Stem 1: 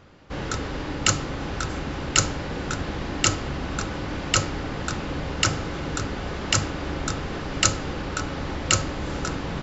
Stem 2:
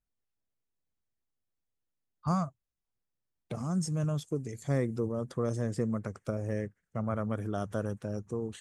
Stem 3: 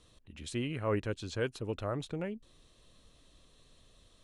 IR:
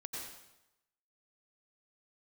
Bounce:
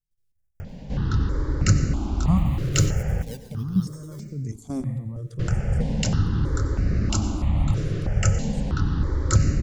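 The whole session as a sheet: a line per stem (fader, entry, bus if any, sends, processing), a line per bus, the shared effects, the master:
−4.0 dB, 0.60 s, muted 0:03.22–0:05.39, send −6 dB, high-shelf EQ 2,500 Hz −8.5 dB; upward compression, threshold −31 dBFS
0.0 dB, 0.00 s, send −5.5 dB, output level in coarse steps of 14 dB
−3.5 dB, 1.90 s, send −9.5 dB, high-shelf EQ 4,400 Hz +7 dB; sample-and-hold swept by an LFO 13×, swing 60% 1.4 Hz; automatic ducking −10 dB, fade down 0.40 s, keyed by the second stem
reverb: on, RT60 0.90 s, pre-delay 83 ms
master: bass and treble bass +14 dB, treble +5 dB; step-sequenced phaser 3.1 Hz 230–3,300 Hz

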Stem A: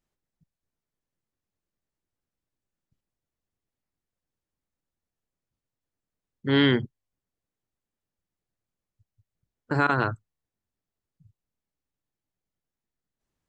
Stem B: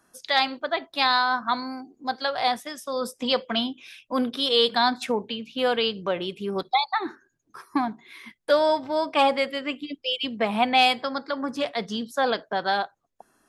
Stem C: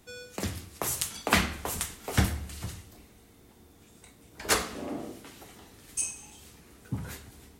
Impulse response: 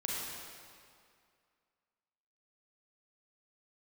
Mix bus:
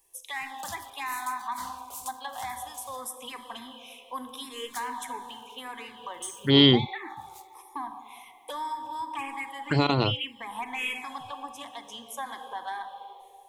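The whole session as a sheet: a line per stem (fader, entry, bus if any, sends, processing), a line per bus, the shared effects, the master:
+2.5 dB, 0.00 s, no bus, no send, high-shelf EQ 4,000 Hz +8.5 dB
−1.5 dB, 0.00 s, bus A, send −12 dB, soft clipping −8.5 dBFS, distortion −25 dB; phaser with its sweep stopped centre 940 Hz, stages 8
−10.0 dB, 0.25 s, bus A, no send, leveller curve on the samples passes 3; automatic ducking −12 dB, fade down 1.50 s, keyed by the second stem
bus A: 0.0 dB, low-shelf EQ 460 Hz −11 dB; downward compressor 5 to 1, threshold −33 dBFS, peak gain reduction 11 dB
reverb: on, RT60 2.2 s, pre-delay 32 ms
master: high-shelf EQ 2,800 Hz +7 dB; phaser swept by the level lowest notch 240 Hz, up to 1,600 Hz, full sweep at −19 dBFS

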